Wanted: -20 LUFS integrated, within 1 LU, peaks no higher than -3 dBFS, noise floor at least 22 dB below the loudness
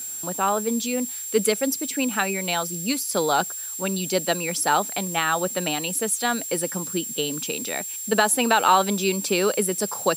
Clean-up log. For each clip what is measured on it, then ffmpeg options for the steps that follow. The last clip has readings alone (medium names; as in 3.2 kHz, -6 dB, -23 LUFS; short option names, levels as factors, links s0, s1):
steady tone 7.5 kHz; tone level -31 dBFS; noise floor -33 dBFS; noise floor target -45 dBFS; loudness -23.0 LUFS; peak level -4.5 dBFS; loudness target -20.0 LUFS
-> -af "bandreject=f=7500:w=30"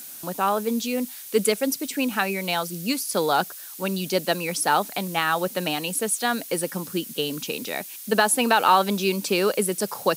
steady tone not found; noise floor -40 dBFS; noise floor target -46 dBFS
-> -af "afftdn=nr=6:nf=-40"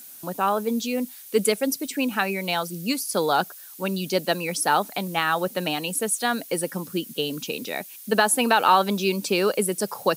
noise floor -43 dBFS; noise floor target -46 dBFS
-> -af "afftdn=nr=6:nf=-43"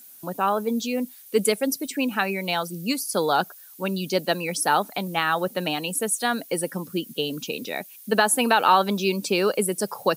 noise floor -47 dBFS; loudness -24.0 LUFS; peak level -5.0 dBFS; loudness target -20.0 LUFS
-> -af "volume=1.58,alimiter=limit=0.708:level=0:latency=1"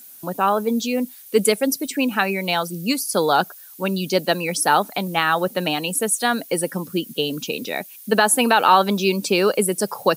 loudness -20.5 LUFS; peak level -3.0 dBFS; noise floor -43 dBFS